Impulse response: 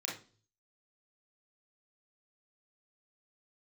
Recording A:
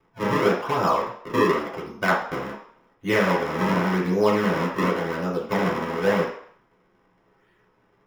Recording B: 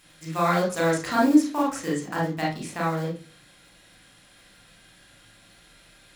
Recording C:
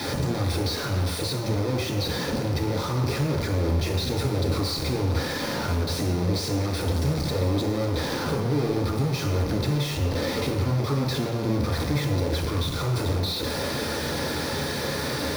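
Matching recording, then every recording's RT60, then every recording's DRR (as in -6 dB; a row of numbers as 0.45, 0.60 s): B; 0.60 s, 0.40 s, not exponential; -6.0, -3.5, -2.5 dB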